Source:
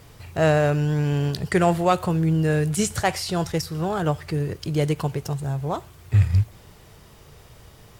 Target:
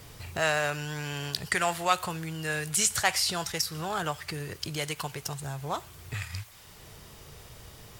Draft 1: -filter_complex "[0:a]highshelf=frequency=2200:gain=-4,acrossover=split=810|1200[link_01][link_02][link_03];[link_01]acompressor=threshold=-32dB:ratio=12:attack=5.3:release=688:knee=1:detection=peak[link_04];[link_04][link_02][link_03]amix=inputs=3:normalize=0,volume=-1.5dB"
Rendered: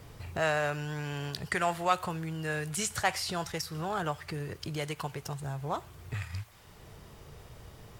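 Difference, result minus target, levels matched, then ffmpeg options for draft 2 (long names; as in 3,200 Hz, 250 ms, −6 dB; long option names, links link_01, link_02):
4,000 Hz band −3.5 dB
-filter_complex "[0:a]highshelf=frequency=2200:gain=5.5,acrossover=split=810|1200[link_01][link_02][link_03];[link_01]acompressor=threshold=-32dB:ratio=12:attack=5.3:release=688:knee=1:detection=peak[link_04];[link_04][link_02][link_03]amix=inputs=3:normalize=0,volume=-1.5dB"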